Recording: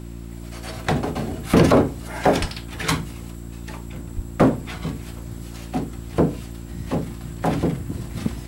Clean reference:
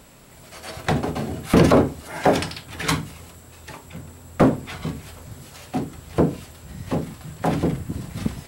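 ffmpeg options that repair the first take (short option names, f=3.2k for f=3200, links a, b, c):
-filter_complex "[0:a]bandreject=f=57.6:t=h:w=4,bandreject=f=115.2:t=h:w=4,bandreject=f=172.8:t=h:w=4,bandreject=f=230.4:t=h:w=4,bandreject=f=288:t=h:w=4,bandreject=f=345.6:t=h:w=4,asplit=3[a][b][c];[a]afade=t=out:st=2.4:d=0.02[d];[b]highpass=f=140:w=0.5412,highpass=f=140:w=1.3066,afade=t=in:st=2.4:d=0.02,afade=t=out:st=2.52:d=0.02[e];[c]afade=t=in:st=2.52:d=0.02[f];[d][e][f]amix=inputs=3:normalize=0,asplit=3[g][h][i];[g]afade=t=out:st=4.15:d=0.02[j];[h]highpass=f=140:w=0.5412,highpass=f=140:w=1.3066,afade=t=in:st=4.15:d=0.02,afade=t=out:st=4.27:d=0.02[k];[i]afade=t=in:st=4.27:d=0.02[l];[j][k][l]amix=inputs=3:normalize=0"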